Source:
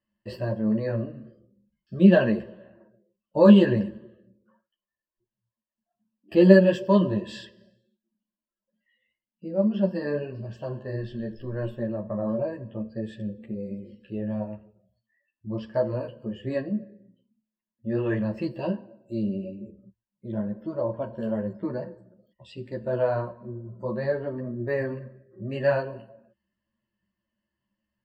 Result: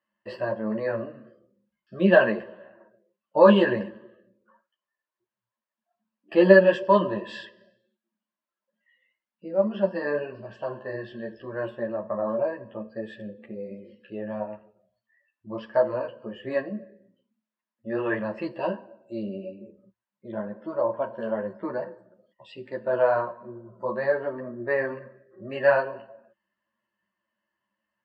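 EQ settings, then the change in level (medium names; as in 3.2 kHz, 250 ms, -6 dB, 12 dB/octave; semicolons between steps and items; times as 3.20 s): band-pass filter 1.2 kHz, Q 0.9; +8.0 dB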